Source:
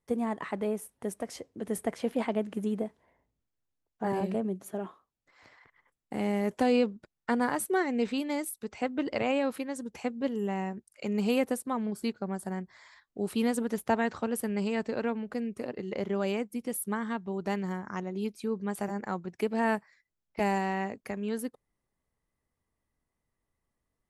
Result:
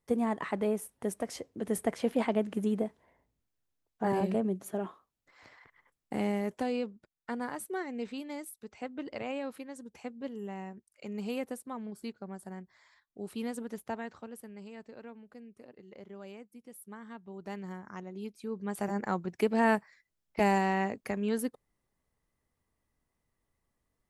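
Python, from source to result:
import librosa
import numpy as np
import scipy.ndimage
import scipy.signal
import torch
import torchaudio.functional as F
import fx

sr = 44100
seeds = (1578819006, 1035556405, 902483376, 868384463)

y = fx.gain(x, sr, db=fx.line((6.13, 1.0), (6.75, -8.5), (13.74, -8.5), (14.57, -16.5), (16.72, -16.5), (17.71, -7.5), (18.38, -7.5), (18.98, 2.0)))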